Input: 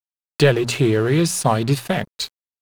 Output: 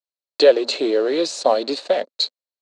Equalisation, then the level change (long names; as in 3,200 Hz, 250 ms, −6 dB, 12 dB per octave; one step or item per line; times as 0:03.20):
Chebyshev band-pass filter 260–7,800 Hz, order 4
parametric band 550 Hz +14.5 dB 0.76 octaves
parametric band 4,200 Hz +15 dB 0.32 octaves
−6.0 dB